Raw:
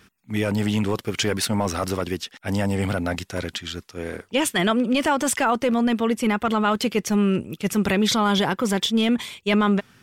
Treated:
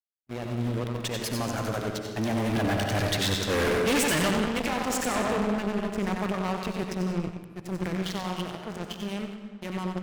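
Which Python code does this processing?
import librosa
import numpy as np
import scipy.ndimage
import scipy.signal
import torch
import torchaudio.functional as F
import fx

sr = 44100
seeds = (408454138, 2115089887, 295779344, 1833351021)

p1 = fx.doppler_pass(x, sr, speed_mps=42, closest_m=8.8, pass_at_s=3.65)
p2 = fx.backlash(p1, sr, play_db=-47.0)
p3 = p2 + fx.echo_feedback(p2, sr, ms=92, feedback_pct=35, wet_db=-7.0, dry=0)
p4 = fx.leveller(p3, sr, passes=5)
p5 = fx.rev_freeverb(p4, sr, rt60_s=1.6, hf_ratio=0.8, predelay_ms=40, drr_db=4.0)
y = fx.tube_stage(p5, sr, drive_db=21.0, bias=0.7)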